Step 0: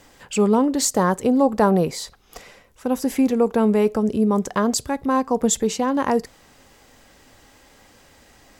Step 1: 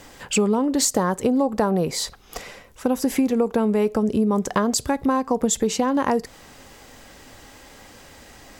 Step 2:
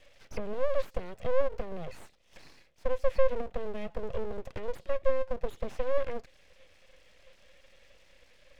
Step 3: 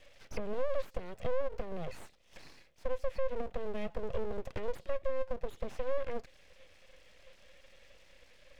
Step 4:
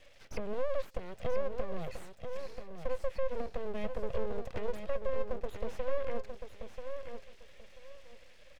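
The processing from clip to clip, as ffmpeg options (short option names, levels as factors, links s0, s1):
-af "acompressor=threshold=0.0708:ratio=6,volume=2"
-filter_complex "[0:a]asplit=3[s0][s1][s2];[s0]bandpass=f=270:t=q:w=8,volume=1[s3];[s1]bandpass=f=2290:t=q:w=8,volume=0.501[s4];[s2]bandpass=f=3010:t=q:w=8,volume=0.355[s5];[s3][s4][s5]amix=inputs=3:normalize=0,aeval=exprs='abs(val(0))':c=same,acrossover=split=3000[s6][s7];[s7]acompressor=threshold=0.00126:ratio=4:attack=1:release=60[s8];[s6][s8]amix=inputs=2:normalize=0,volume=1.19"
-af "alimiter=limit=0.075:level=0:latency=1:release=230"
-af "aecho=1:1:986|1972|2958:0.422|0.0928|0.0204"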